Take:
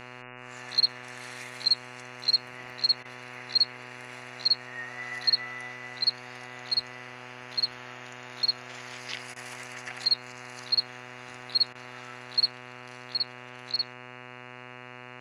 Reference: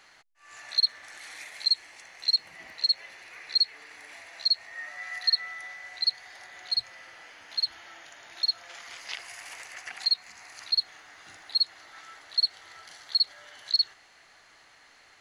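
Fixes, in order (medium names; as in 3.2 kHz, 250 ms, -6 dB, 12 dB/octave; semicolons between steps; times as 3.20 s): de-hum 124.2 Hz, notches 23; interpolate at 3.03/9.34/11.73 s, 20 ms; gain correction +5.5 dB, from 12.51 s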